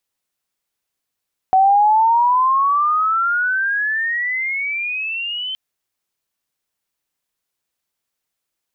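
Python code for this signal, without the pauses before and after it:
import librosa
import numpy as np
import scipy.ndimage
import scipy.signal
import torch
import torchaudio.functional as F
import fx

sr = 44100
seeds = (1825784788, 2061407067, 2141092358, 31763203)

y = fx.chirp(sr, length_s=4.02, from_hz=750.0, to_hz=3100.0, law='logarithmic', from_db=-9.0, to_db=-22.5)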